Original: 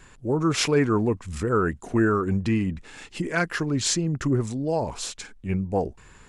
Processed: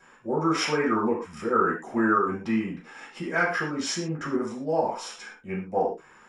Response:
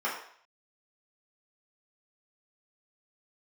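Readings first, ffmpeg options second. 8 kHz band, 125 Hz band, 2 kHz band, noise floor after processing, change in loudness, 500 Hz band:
-8.0 dB, -10.5 dB, +1.5 dB, -54 dBFS, -1.5 dB, -1.5 dB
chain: -filter_complex "[1:a]atrim=start_sample=2205,afade=t=out:st=0.18:d=0.01,atrim=end_sample=8379[a];[0:a][a]afir=irnorm=-1:irlink=0,volume=-8dB"

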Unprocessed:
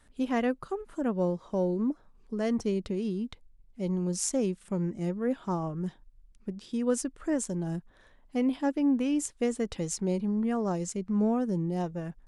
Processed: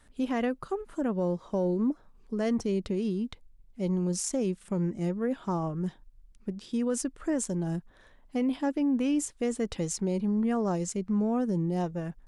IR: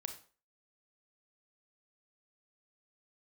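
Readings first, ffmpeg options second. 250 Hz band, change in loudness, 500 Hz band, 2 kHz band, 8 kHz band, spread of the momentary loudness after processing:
+0.5 dB, +0.5 dB, 0.0 dB, -0.5 dB, 0.0 dB, 8 LU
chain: -af "acontrast=69,alimiter=limit=-16dB:level=0:latency=1:release=20,volume=-5dB"

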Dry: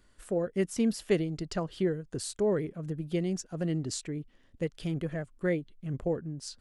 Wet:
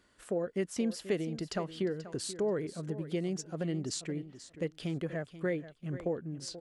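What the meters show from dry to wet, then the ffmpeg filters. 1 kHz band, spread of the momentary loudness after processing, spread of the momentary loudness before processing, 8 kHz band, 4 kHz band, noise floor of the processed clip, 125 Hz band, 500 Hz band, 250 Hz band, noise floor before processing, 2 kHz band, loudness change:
-2.0 dB, 6 LU, 8 LU, -2.0 dB, -0.5 dB, -64 dBFS, -4.0 dB, -3.0 dB, -3.5 dB, -63 dBFS, -2.0 dB, -3.5 dB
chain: -af "highpass=f=190:p=1,highshelf=f=9.9k:g=-9,acompressor=threshold=-33dB:ratio=2,aecho=1:1:484|968:0.2|0.0339,volume=1.5dB"

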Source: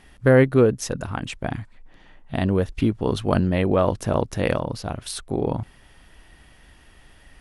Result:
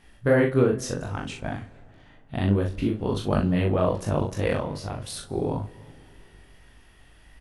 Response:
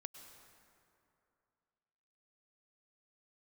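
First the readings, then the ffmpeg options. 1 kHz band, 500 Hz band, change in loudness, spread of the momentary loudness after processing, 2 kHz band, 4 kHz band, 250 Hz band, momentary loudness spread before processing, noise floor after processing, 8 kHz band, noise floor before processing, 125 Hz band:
-3.5 dB, -3.5 dB, -3.0 dB, 13 LU, -3.5 dB, -3.5 dB, -3.0 dB, 14 LU, -54 dBFS, -3.5 dB, -53 dBFS, -2.5 dB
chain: -filter_complex "[0:a]flanger=delay=18.5:depth=4:speed=2.7,aecho=1:1:40|73:0.596|0.141,asplit=2[a][b];[1:a]atrim=start_sample=2205,lowshelf=f=180:g=7[c];[b][c]afir=irnorm=-1:irlink=0,volume=-6dB[d];[a][d]amix=inputs=2:normalize=0,volume=-4dB"

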